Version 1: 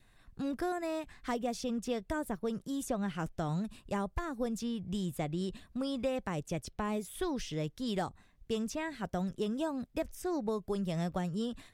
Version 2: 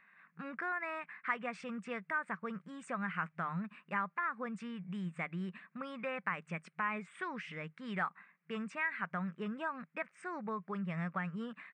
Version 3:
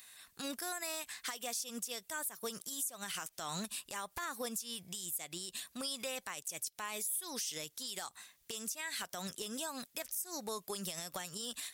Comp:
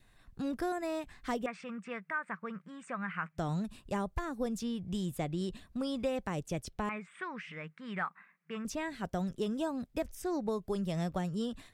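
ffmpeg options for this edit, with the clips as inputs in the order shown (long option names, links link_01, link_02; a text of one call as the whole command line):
ffmpeg -i take0.wav -i take1.wav -filter_complex "[1:a]asplit=2[link_01][link_02];[0:a]asplit=3[link_03][link_04][link_05];[link_03]atrim=end=1.462[link_06];[link_01]atrim=start=1.458:end=3.382[link_07];[link_04]atrim=start=3.378:end=6.892[link_08];[link_02]atrim=start=6.888:end=8.652[link_09];[link_05]atrim=start=8.648[link_10];[link_06][link_07]acrossfade=duration=0.004:curve1=hsin:curve2=hsin[link_11];[link_11][link_08]acrossfade=duration=0.004:curve1=hsin:curve2=hsin[link_12];[link_12][link_09]acrossfade=duration=0.004:curve1=hsin:curve2=hsin[link_13];[link_13][link_10]acrossfade=duration=0.004:curve1=hsin:curve2=hsin" out.wav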